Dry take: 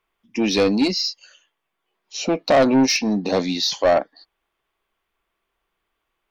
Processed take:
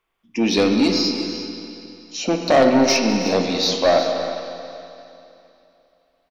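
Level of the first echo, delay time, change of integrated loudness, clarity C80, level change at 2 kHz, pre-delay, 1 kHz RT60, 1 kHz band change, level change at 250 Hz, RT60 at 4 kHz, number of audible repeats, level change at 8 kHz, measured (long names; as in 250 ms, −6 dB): −16.5 dB, 202 ms, +1.0 dB, 4.0 dB, +1.5 dB, 17 ms, 2.9 s, +2.0 dB, +1.5 dB, 2.7 s, 3, can't be measured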